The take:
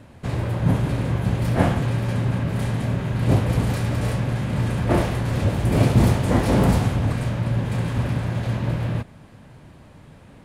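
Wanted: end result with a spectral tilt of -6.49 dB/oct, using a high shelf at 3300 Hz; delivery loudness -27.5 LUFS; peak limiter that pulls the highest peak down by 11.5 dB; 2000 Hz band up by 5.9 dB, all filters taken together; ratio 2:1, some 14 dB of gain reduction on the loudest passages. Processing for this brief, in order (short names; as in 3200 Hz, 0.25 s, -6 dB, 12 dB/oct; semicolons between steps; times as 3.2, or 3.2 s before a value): bell 2000 Hz +8.5 dB; high shelf 3300 Hz -4 dB; compressor 2:1, threshold -39 dBFS; gain +10 dB; limiter -18.5 dBFS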